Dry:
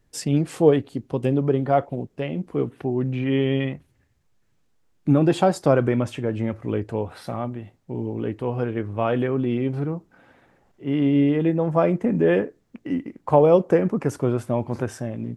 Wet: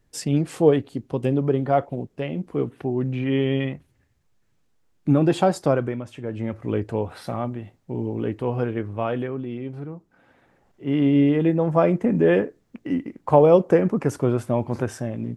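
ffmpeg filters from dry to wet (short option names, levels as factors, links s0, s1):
-af "volume=10.6,afade=t=out:st=5.59:d=0.45:silence=0.298538,afade=t=in:st=6.04:d=0.74:silence=0.251189,afade=t=out:st=8.58:d=0.88:silence=0.354813,afade=t=in:st=9.96:d=0.99:silence=0.354813"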